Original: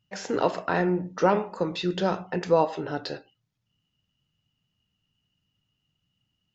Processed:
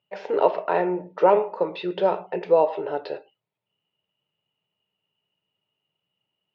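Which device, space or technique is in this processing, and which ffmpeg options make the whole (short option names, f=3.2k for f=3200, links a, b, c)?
kitchen radio: -filter_complex "[0:a]highpass=230,equalizer=f=250:t=q:w=4:g=-9,equalizer=f=420:t=q:w=4:g=9,equalizer=f=600:t=q:w=4:g=9,equalizer=f=910:t=q:w=4:g=8,equalizer=f=1.6k:t=q:w=4:g=-3,equalizer=f=2.4k:t=q:w=4:g=4,lowpass=f=3.6k:w=0.5412,lowpass=f=3.6k:w=1.3066,asettb=1/sr,asplit=3[a][b][c];[a]atrim=end=2.264[d];[b]atrim=start=2.26:end=2.67,asetpts=PTS-STARTPTS,afade=t=in:d=0.004:c=qsin,afade=t=out:st=0.406:d=0.004:c=qsin,equalizer=f=1.1k:t=o:w=0.83:g=-6[e];[c]atrim=start=2.666[f];[d][e]acrossfade=d=0.004:c1=hsin:c2=qsin[g];[g][f]acrossfade=d=0.004:c1=qsin:c2=hsin,volume=-2dB"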